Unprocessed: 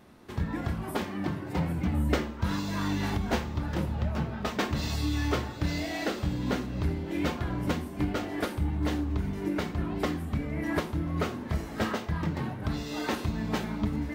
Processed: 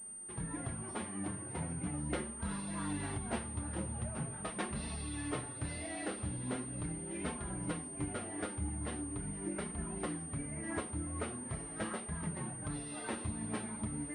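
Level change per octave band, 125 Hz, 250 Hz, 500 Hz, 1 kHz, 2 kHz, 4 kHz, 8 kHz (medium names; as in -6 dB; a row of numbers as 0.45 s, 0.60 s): -10.5 dB, -9.5 dB, -9.5 dB, -9.5 dB, -9.5 dB, -12.5 dB, +7.5 dB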